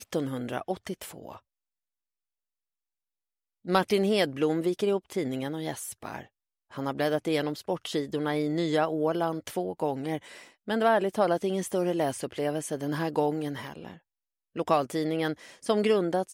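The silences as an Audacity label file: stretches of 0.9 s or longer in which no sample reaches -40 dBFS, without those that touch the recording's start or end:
1.370000	3.650000	silence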